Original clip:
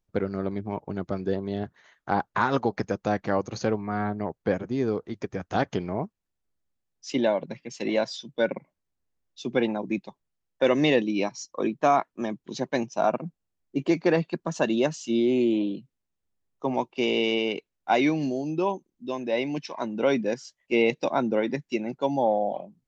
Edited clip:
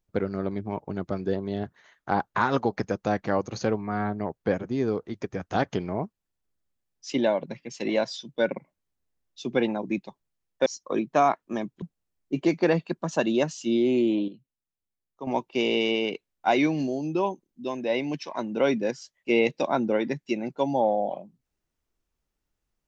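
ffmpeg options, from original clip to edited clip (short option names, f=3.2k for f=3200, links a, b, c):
-filter_complex "[0:a]asplit=5[a][b][c][d][e];[a]atrim=end=10.662[f];[b]atrim=start=11.338:end=12.502[g];[c]atrim=start=13.248:end=15.712[h];[d]atrim=start=15.708:end=16.702,asetpts=PTS-STARTPTS,volume=-9.5dB[i];[e]atrim=start=16.698[j];[f][g]acrossfade=d=0.004:c1=hsin:c2=hsin[k];[k][h]acrossfade=d=0.004:c1=hsin:c2=hsin[l];[l][i]acrossfade=d=0.004:c1=hsin:c2=hsin[m];[m][j]acrossfade=d=0.004:c1=hsin:c2=hsin"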